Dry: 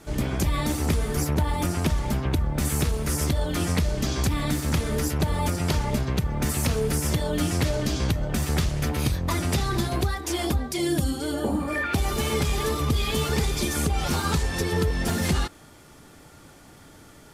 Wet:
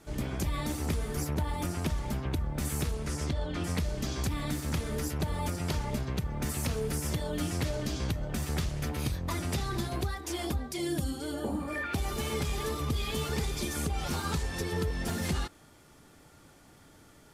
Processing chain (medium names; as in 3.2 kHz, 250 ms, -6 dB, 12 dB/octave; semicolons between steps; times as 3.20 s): 2.93–3.63 s: low-pass 10 kHz -> 3.9 kHz 12 dB/octave; trim -7.5 dB